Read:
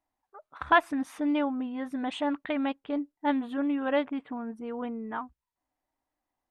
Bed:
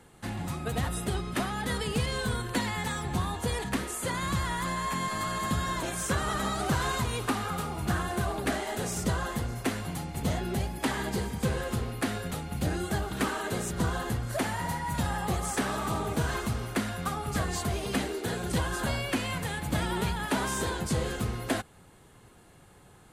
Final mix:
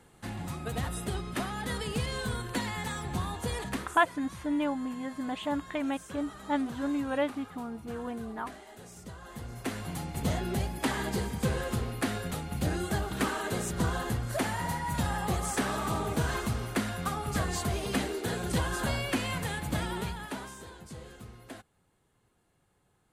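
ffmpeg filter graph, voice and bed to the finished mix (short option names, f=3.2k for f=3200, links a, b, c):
-filter_complex "[0:a]adelay=3250,volume=-2.5dB[a];[1:a]volume=13dB,afade=t=out:st=3.7:d=0.32:silence=0.211349,afade=t=in:st=9.21:d=0.86:silence=0.158489,afade=t=out:st=19.51:d=1.06:silence=0.16788[b];[a][b]amix=inputs=2:normalize=0"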